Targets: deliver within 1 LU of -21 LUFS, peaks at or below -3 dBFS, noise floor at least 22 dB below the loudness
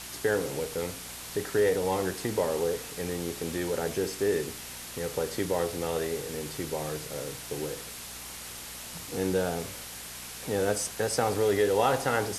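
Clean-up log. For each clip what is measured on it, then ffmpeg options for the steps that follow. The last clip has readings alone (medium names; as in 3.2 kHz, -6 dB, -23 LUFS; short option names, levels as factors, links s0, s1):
hum 60 Hz; highest harmonic 240 Hz; hum level -52 dBFS; noise floor -42 dBFS; noise floor target -53 dBFS; loudness -30.5 LUFS; peak level -12.5 dBFS; loudness target -21.0 LUFS
-> -af "bandreject=f=60:t=h:w=4,bandreject=f=120:t=h:w=4,bandreject=f=180:t=h:w=4,bandreject=f=240:t=h:w=4"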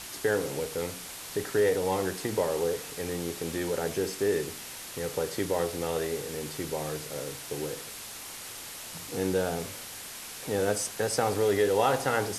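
hum not found; noise floor -42 dBFS; noise floor target -53 dBFS
-> -af "afftdn=nr=11:nf=-42"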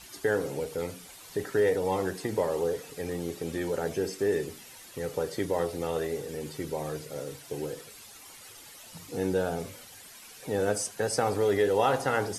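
noise floor -49 dBFS; noise floor target -53 dBFS
-> -af "afftdn=nr=6:nf=-49"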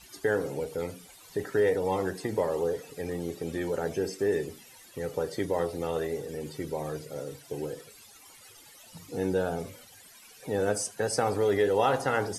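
noise floor -53 dBFS; loudness -30.5 LUFS; peak level -13.0 dBFS; loudness target -21.0 LUFS
-> -af "volume=2.99"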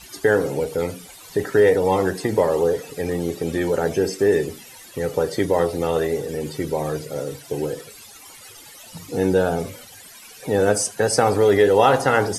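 loudness -21.0 LUFS; peak level -3.5 dBFS; noise floor -44 dBFS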